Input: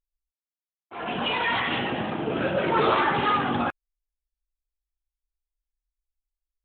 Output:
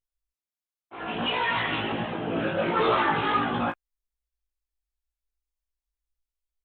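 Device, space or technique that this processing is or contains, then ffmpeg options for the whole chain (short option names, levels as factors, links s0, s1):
double-tracked vocal: -filter_complex "[0:a]asplit=2[s0][s1];[s1]adelay=18,volume=0.668[s2];[s0][s2]amix=inputs=2:normalize=0,flanger=delay=16:depth=2.8:speed=1.4"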